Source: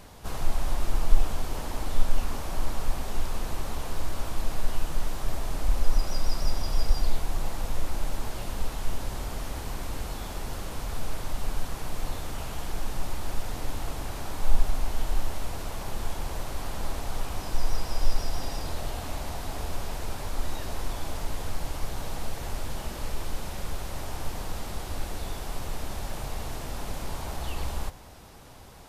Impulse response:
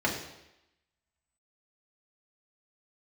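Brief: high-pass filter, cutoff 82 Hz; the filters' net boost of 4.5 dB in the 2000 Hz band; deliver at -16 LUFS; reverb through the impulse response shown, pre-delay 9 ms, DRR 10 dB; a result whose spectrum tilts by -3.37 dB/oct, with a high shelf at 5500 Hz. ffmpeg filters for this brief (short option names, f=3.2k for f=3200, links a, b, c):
-filter_complex "[0:a]highpass=82,equalizer=f=2k:t=o:g=5,highshelf=f=5.5k:g=5.5,asplit=2[a][b];[1:a]atrim=start_sample=2205,adelay=9[c];[b][c]afir=irnorm=-1:irlink=0,volume=-21dB[d];[a][d]amix=inputs=2:normalize=0,volume=19.5dB"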